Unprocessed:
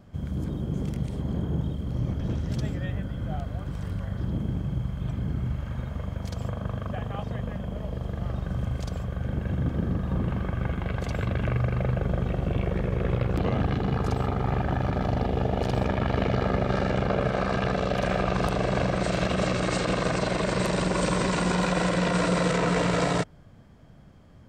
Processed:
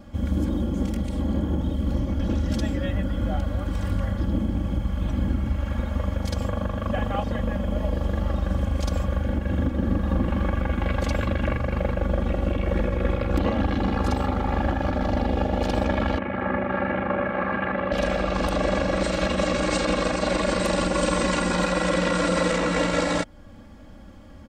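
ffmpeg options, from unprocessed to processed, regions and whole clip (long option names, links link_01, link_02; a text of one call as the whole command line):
ffmpeg -i in.wav -filter_complex "[0:a]asettb=1/sr,asplit=3[link_01][link_02][link_03];[link_01]atrim=end=16.184[link_04];[link_02]atrim=start=16.18:end=17.92,asetpts=PTS-STARTPTS,afade=type=in:duration=0.004:curve=qsin,afade=type=out:start_time=1.736:duration=0.004:curve=qsin,highpass=160,equalizer=frequency=190:width_type=q:width=4:gain=-4,equalizer=frequency=280:width_type=q:width=4:gain=-9,equalizer=frequency=470:width_type=q:width=4:gain=-10,equalizer=frequency=670:width_type=q:width=4:gain=-9,equalizer=frequency=980:width_type=q:width=4:gain=-3,equalizer=frequency=1400:width_type=q:width=4:gain=-4,lowpass=frequency=2100:width=0.5412,lowpass=frequency=2100:width=1.3066,asoftclip=type=hard:threshold=-19.5dB[link_05];[link_03]atrim=start=17.916[link_06];[link_04][link_05]acrossfade=duration=0.004:curve1=hsin:curve2=qsin[link_07];[link_07][link_06]acrossfade=duration=0.004:curve1=qsin:curve2=hsin,alimiter=limit=-20.5dB:level=0:latency=1:release=326,aecho=1:1:3.6:0.94,volume=5.5dB" out.wav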